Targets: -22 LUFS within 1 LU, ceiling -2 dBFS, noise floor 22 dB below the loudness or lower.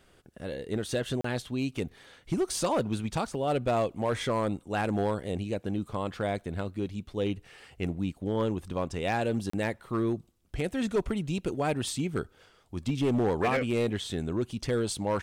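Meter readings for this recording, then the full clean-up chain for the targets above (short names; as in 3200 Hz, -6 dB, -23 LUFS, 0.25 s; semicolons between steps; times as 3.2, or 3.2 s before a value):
clipped 1.0%; flat tops at -21.0 dBFS; dropouts 2; longest dropout 34 ms; loudness -31.0 LUFS; peak -21.0 dBFS; loudness target -22.0 LUFS
-> clip repair -21 dBFS; interpolate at 1.21/9.5, 34 ms; gain +9 dB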